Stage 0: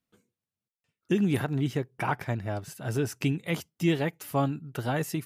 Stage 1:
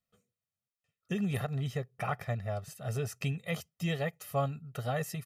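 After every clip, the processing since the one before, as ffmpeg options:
ffmpeg -i in.wav -af "aecho=1:1:1.6:0.93,volume=-7dB" out.wav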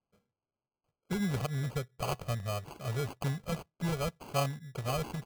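ffmpeg -i in.wav -af "acrusher=samples=24:mix=1:aa=0.000001" out.wav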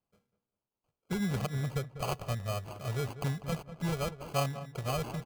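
ffmpeg -i in.wav -filter_complex "[0:a]asplit=2[link_01][link_02];[link_02]adelay=196,lowpass=frequency=1700:poles=1,volume=-12dB,asplit=2[link_03][link_04];[link_04]adelay=196,lowpass=frequency=1700:poles=1,volume=0.22,asplit=2[link_05][link_06];[link_06]adelay=196,lowpass=frequency=1700:poles=1,volume=0.22[link_07];[link_01][link_03][link_05][link_07]amix=inputs=4:normalize=0" out.wav

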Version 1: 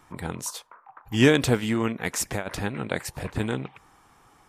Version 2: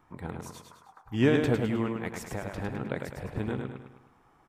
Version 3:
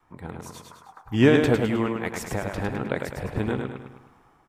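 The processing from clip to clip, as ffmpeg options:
ffmpeg -i in.wav -filter_complex "[0:a]equalizer=frequency=8700:width=0.31:gain=-13.5,asplit=2[link_01][link_02];[link_02]aecho=0:1:104|208|312|416|520|624:0.562|0.259|0.119|0.0547|0.0252|0.0116[link_03];[link_01][link_03]amix=inputs=2:normalize=0,volume=-5dB" out.wav
ffmpeg -i in.wav -af "adynamicequalizer=threshold=0.00891:dfrequency=140:dqfactor=0.76:tfrequency=140:tqfactor=0.76:attack=5:release=100:ratio=0.375:range=3:mode=cutabove:tftype=bell,dynaudnorm=framelen=220:gausssize=5:maxgain=7dB" out.wav

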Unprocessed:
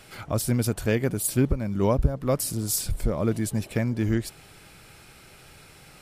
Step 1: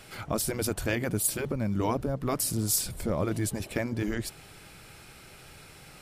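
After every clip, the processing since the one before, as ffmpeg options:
ffmpeg -i in.wav -af "afftfilt=real='re*lt(hypot(re,im),0.447)':imag='im*lt(hypot(re,im),0.447)':win_size=1024:overlap=0.75" out.wav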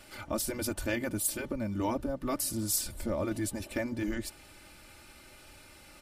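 ffmpeg -i in.wav -af "aecho=1:1:3.4:0.7,volume=-5dB" out.wav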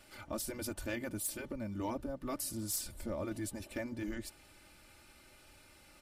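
ffmpeg -i in.wav -af "asoftclip=type=hard:threshold=-23dB,volume=-6.5dB" out.wav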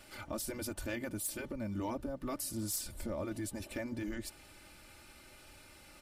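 ffmpeg -i in.wav -af "alimiter=level_in=9.5dB:limit=-24dB:level=0:latency=1:release=178,volume=-9.5dB,volume=3.5dB" out.wav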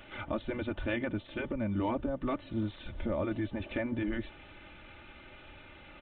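ffmpeg -i in.wav -af "aresample=8000,aresample=44100,volume=6dB" out.wav

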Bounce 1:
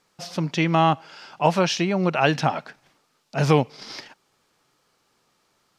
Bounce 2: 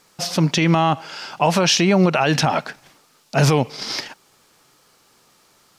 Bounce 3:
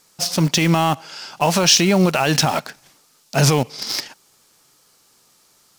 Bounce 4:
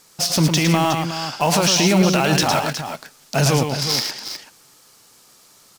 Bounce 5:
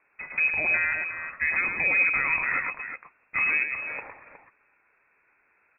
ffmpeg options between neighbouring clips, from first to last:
ffmpeg -i in.wav -af "highshelf=frequency=6800:gain=8,alimiter=level_in=14dB:limit=-1dB:release=50:level=0:latency=1,volume=-5dB" out.wav
ffmpeg -i in.wav -filter_complex "[0:a]asplit=2[link_01][link_02];[link_02]aeval=exprs='val(0)*gte(abs(val(0)),0.0891)':channel_layout=same,volume=-5dB[link_03];[link_01][link_03]amix=inputs=2:normalize=0,bass=frequency=250:gain=1,treble=frequency=4000:gain=8,volume=-4.5dB" out.wav
ffmpeg -i in.wav -filter_complex "[0:a]alimiter=limit=-12dB:level=0:latency=1:release=41,asplit=2[link_01][link_02];[link_02]aecho=0:1:108|364:0.531|0.335[link_03];[link_01][link_03]amix=inputs=2:normalize=0,volume=4dB" out.wav
ffmpeg -i in.wav -af "lowpass=frequency=2300:width_type=q:width=0.5098,lowpass=frequency=2300:width_type=q:width=0.6013,lowpass=frequency=2300:width_type=q:width=0.9,lowpass=frequency=2300:width_type=q:width=2.563,afreqshift=-2700,volume=-7.5dB" out.wav

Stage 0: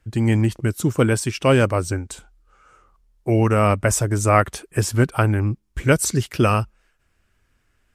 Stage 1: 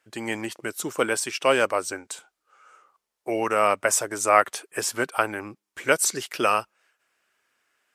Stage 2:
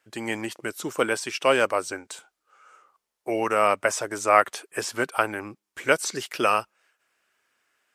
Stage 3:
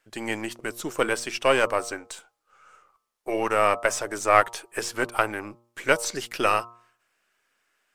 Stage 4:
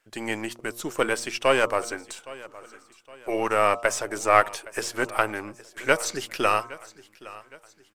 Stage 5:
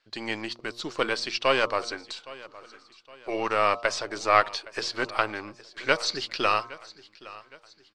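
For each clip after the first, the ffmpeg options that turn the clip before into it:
ffmpeg -i in.wav -af "highpass=530" out.wav
ffmpeg -i in.wav -filter_complex "[0:a]acrossover=split=5900[link_01][link_02];[link_02]acompressor=threshold=-37dB:ratio=4:attack=1:release=60[link_03];[link_01][link_03]amix=inputs=2:normalize=0" out.wav
ffmpeg -i in.wav -af "aeval=exprs='if(lt(val(0),0),0.708*val(0),val(0))':channel_layout=same,bandreject=frequency=117.6:width_type=h:width=4,bandreject=frequency=235.2:width_type=h:width=4,bandreject=frequency=352.8:width_type=h:width=4,bandreject=frequency=470.4:width_type=h:width=4,bandreject=frequency=588:width_type=h:width=4,bandreject=frequency=705.6:width_type=h:width=4,bandreject=frequency=823.2:width_type=h:width=4,bandreject=frequency=940.8:width_type=h:width=4,bandreject=frequency=1058.4:width_type=h:width=4,bandreject=frequency=1176:width_type=h:width=4,bandreject=frequency=1293.6:width_type=h:width=4,volume=1dB" out.wav
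ffmpeg -i in.wav -af "aecho=1:1:815|1630|2445:0.106|0.0455|0.0196" out.wav
ffmpeg -i in.wav -af "lowpass=frequency=4400:width_type=q:width=5,equalizer=frequency=1100:width_type=o:width=0.28:gain=3.5,volume=-3.5dB" out.wav

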